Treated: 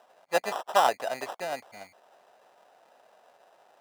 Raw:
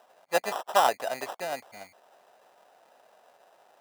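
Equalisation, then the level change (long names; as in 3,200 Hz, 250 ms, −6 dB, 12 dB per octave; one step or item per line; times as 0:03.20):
high-shelf EQ 10,000 Hz −6.5 dB
0.0 dB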